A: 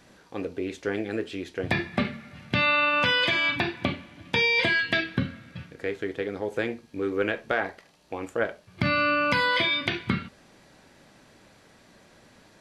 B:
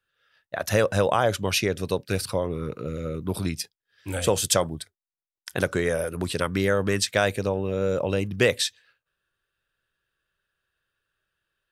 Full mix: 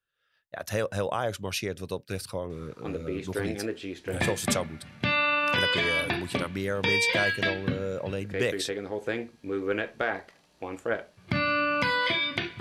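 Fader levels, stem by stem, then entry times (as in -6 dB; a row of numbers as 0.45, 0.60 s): -2.5, -7.5 dB; 2.50, 0.00 s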